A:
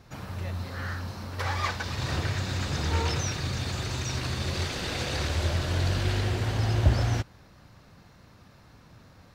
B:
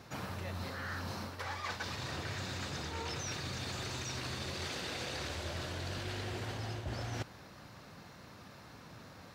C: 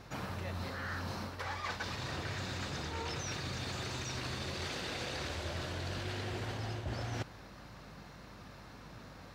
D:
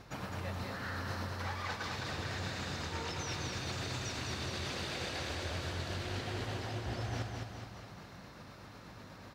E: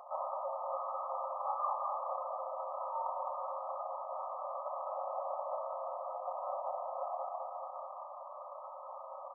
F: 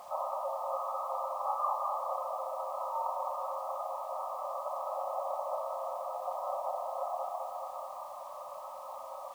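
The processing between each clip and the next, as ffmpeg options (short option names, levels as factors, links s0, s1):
-af "highpass=f=190:p=1,areverse,acompressor=threshold=0.01:ratio=12,areverse,volume=1.5"
-af "highshelf=f=6300:g=-4.5,aeval=exprs='val(0)+0.00112*(sin(2*PI*50*n/s)+sin(2*PI*2*50*n/s)/2+sin(2*PI*3*50*n/s)/3+sin(2*PI*4*50*n/s)/4+sin(2*PI*5*50*n/s)/5)':c=same,volume=1.12"
-af "tremolo=f=8.1:d=0.32,aecho=1:1:209|418|627|836|1045|1254|1463|1672:0.631|0.353|0.198|0.111|0.0621|0.0347|0.0195|0.0109"
-af "aecho=1:1:32|63:0.562|0.531,acompressor=threshold=0.0112:ratio=2,afftfilt=real='re*between(b*sr/4096,520,1300)':imag='im*between(b*sr/4096,520,1300)':win_size=4096:overlap=0.75,volume=2.99"
-af "acrusher=bits=9:mix=0:aa=0.000001,volume=1.41"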